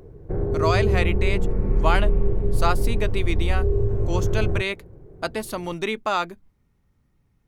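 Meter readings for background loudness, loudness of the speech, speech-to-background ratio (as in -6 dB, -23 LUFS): -24.5 LUFS, -27.5 LUFS, -3.0 dB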